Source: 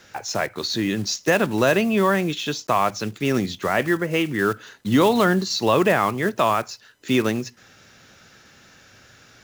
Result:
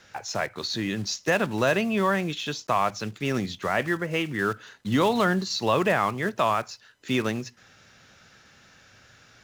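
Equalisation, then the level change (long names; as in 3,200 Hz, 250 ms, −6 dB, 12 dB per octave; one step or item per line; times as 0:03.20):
parametric band 330 Hz −4 dB 1.2 octaves
high-shelf EQ 11,000 Hz −11 dB
−3.0 dB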